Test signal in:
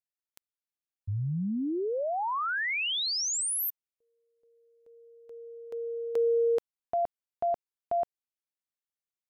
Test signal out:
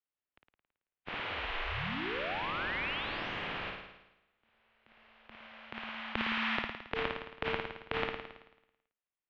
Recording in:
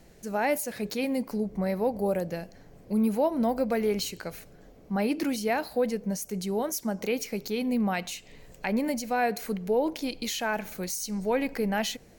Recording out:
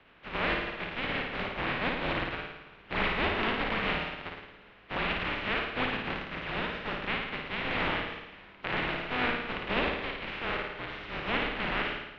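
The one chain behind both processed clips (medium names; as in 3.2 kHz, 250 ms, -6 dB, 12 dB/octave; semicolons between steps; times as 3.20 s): spectral contrast reduction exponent 0.15; flutter echo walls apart 9.4 m, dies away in 0.93 s; mistuned SSB -240 Hz 210–3200 Hz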